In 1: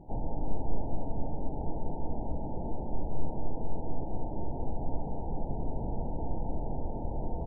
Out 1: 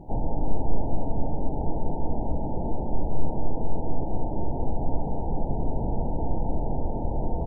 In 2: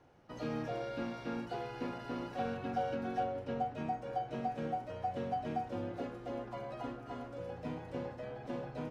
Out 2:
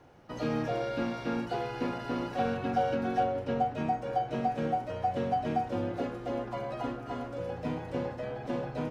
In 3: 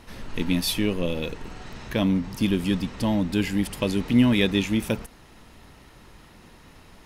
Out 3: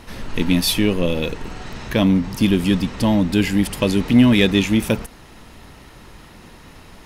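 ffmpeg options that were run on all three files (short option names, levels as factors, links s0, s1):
-af "acontrast=78"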